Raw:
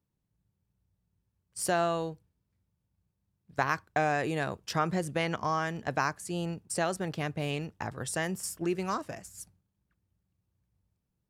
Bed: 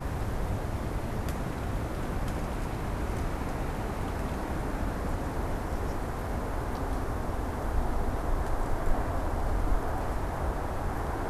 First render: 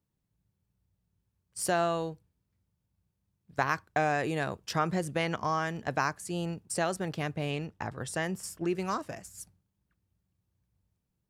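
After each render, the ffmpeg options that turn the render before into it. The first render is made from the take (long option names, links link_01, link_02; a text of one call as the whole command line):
ffmpeg -i in.wav -filter_complex "[0:a]asettb=1/sr,asplit=3[link_01][link_02][link_03];[link_01]atrim=end=7.374[link_04];[link_02]atrim=start=7.37:end=8.75,asetpts=PTS-STARTPTS,afade=type=in:duration=0.004:curve=qsin,afade=type=out:start_time=1.376:duration=0.004:curve=qsin,highshelf=frequency=6400:gain=-6.5[link_05];[link_03]atrim=start=8.746[link_06];[link_04][link_05]acrossfade=duration=0.004:curve1=hsin:curve2=qsin[link_07];[link_07][link_06]acrossfade=duration=0.004:curve1=qsin:curve2=hsin" out.wav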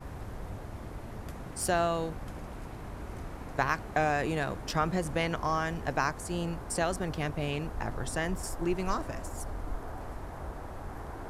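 ffmpeg -i in.wav -i bed.wav -filter_complex "[1:a]volume=-9dB[link_01];[0:a][link_01]amix=inputs=2:normalize=0" out.wav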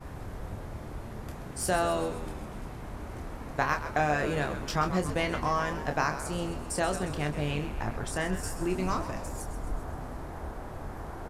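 ffmpeg -i in.wav -filter_complex "[0:a]asplit=2[link_01][link_02];[link_02]adelay=27,volume=-7dB[link_03];[link_01][link_03]amix=inputs=2:normalize=0,asplit=8[link_04][link_05][link_06][link_07][link_08][link_09][link_10][link_11];[link_05]adelay=131,afreqshift=-93,volume=-11dB[link_12];[link_06]adelay=262,afreqshift=-186,volume=-15.2dB[link_13];[link_07]adelay=393,afreqshift=-279,volume=-19.3dB[link_14];[link_08]adelay=524,afreqshift=-372,volume=-23.5dB[link_15];[link_09]adelay=655,afreqshift=-465,volume=-27.6dB[link_16];[link_10]adelay=786,afreqshift=-558,volume=-31.8dB[link_17];[link_11]adelay=917,afreqshift=-651,volume=-35.9dB[link_18];[link_04][link_12][link_13][link_14][link_15][link_16][link_17][link_18]amix=inputs=8:normalize=0" out.wav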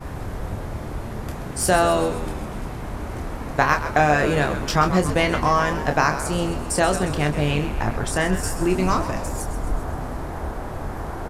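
ffmpeg -i in.wav -af "volume=9.5dB,alimiter=limit=-3dB:level=0:latency=1" out.wav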